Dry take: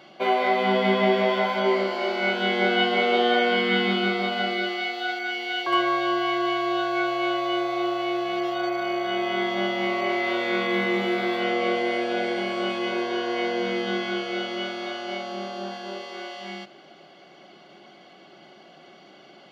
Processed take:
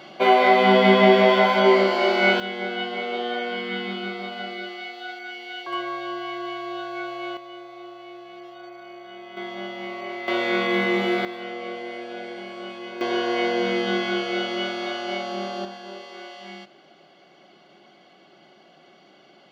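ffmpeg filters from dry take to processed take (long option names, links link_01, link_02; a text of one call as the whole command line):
ffmpeg -i in.wav -af "asetnsamples=nb_out_samples=441:pad=0,asendcmd='2.4 volume volume -7dB;7.37 volume volume -15dB;9.37 volume volume -8dB;10.28 volume volume 2dB;11.25 volume volume -9dB;13.01 volume volume 3dB;15.65 volume volume -3.5dB',volume=6dB" out.wav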